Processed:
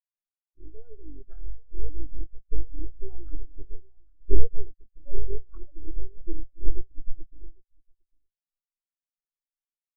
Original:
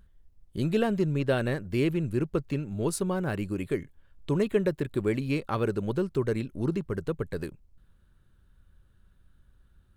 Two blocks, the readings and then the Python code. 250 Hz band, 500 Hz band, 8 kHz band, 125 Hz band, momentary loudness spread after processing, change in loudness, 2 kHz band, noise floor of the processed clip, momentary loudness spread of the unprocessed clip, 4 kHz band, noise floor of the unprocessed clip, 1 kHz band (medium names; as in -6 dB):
-17.5 dB, -14.5 dB, under -35 dB, -7.5 dB, 17 LU, -10.5 dB, under -40 dB, under -85 dBFS, 7 LU, under -40 dB, -63 dBFS, under -30 dB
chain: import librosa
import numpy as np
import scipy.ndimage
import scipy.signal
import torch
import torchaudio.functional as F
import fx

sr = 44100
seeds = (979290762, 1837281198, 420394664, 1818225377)

y = fx.cycle_switch(x, sr, every=3, mode='muted')
y = fx.wow_flutter(y, sr, seeds[0], rate_hz=2.1, depth_cents=100.0)
y = fx.band_shelf(y, sr, hz=550.0, db=-9.0, octaves=1.7)
y = fx.hpss(y, sr, part='percussive', gain_db=-7)
y = fx.notch(y, sr, hz=360.0, q=12.0)
y = fx.rider(y, sr, range_db=4, speed_s=0.5)
y = np.abs(y)
y = fx.low_shelf(y, sr, hz=240.0, db=-8.0)
y = y + 10.0 ** (-6.5 / 20.0) * np.pad(y, (int(803 * sr / 1000.0), 0))[:len(y)]
y = fx.spectral_expand(y, sr, expansion=4.0)
y = F.gain(torch.from_numpy(y), 18.0).numpy()